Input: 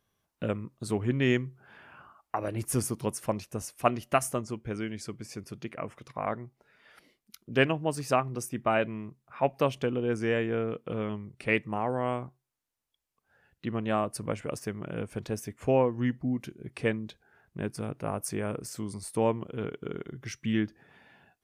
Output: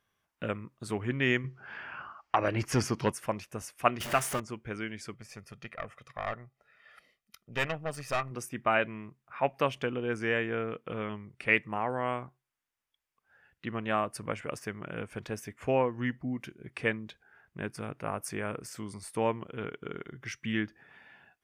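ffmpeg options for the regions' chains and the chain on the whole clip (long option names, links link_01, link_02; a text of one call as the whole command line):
ffmpeg -i in.wav -filter_complex "[0:a]asettb=1/sr,asplit=3[link_01][link_02][link_03];[link_01]atrim=end=1.444[link_04];[link_02]atrim=start=1.44:end=3.12,asetpts=PTS-STARTPTS,afade=type=in:duration=0.004:curve=qsin,afade=type=out:start_time=1.676:duration=0.004:curve=qsin,highshelf=frequency=7400:width_type=q:width=1.5:gain=-12,bandreject=frequency=3600:width=11,aeval=exprs='0.2*sin(PI/2*1.41*val(0)/0.2)':channel_layout=same[link_05];[link_03]atrim=start=3.116[link_06];[link_04][link_05]acrossfade=duration=0.004:curve1=hsin:curve2=qsin[link_07];[link_07][link_06]acrossfade=duration=0.004:curve1=qsin:curve2=hsin,asettb=1/sr,asplit=3[link_08][link_09][link_10];[link_08]atrim=end=4.004[link_11];[link_09]atrim=start=4:end=4.4,asetpts=PTS-STARTPTS,afade=type=in:duration=0.004:curve=qsin,afade=type=out:start_time=0.396:duration=0.004:curve=qsin,aeval=exprs='val(0)+0.5*0.0447*sgn(val(0))':channel_layout=same,tremolo=f=260:d=0.571[link_12];[link_10]atrim=start=4.396[link_13];[link_11][link_12]acrossfade=duration=0.004:curve1=hsin:curve2=qsin[link_14];[link_14][link_13]acrossfade=duration=0.004:curve1=qsin:curve2=hsin,asettb=1/sr,asplit=3[link_15][link_16][link_17];[link_15]atrim=end=5.144[link_18];[link_16]atrim=start=5.14:end=8.31,asetpts=PTS-STARTPTS,afade=type=in:duration=0.004:curve=qsin,afade=type=out:start_time=3.166:duration=0.004:curve=qsin,aecho=1:1:1.6:0.61,atrim=end_sample=139797,aeval=exprs='(tanh(17.8*val(0)+0.7)-tanh(0.7))/17.8':channel_layout=same[link_19];[link_17]atrim=start=8.306[link_20];[link_18][link_19]acrossfade=duration=0.004:curve1=hsin:curve2=qsin[link_21];[link_21][link_20]acrossfade=duration=0.004:curve1=qsin:curve2=hsin,equalizer=frequency=1800:width_type=o:width=2.1:gain=9,bandreject=frequency=4100:width=16,volume=-5dB" out.wav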